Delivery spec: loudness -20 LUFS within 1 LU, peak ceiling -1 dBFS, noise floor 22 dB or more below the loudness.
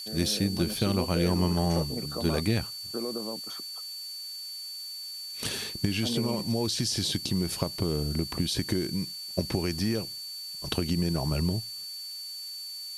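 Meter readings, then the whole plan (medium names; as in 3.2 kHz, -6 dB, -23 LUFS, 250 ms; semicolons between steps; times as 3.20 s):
steady tone 4.5 kHz; tone level -37 dBFS; noise floor -39 dBFS; noise floor target -52 dBFS; loudness -30.0 LUFS; peak level -12.0 dBFS; loudness target -20.0 LUFS
-> band-stop 4.5 kHz, Q 30; noise print and reduce 13 dB; trim +10 dB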